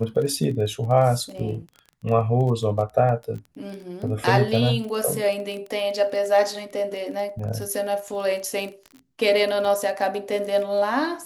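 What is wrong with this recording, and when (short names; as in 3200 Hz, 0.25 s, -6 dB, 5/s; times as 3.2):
crackle 17/s -30 dBFS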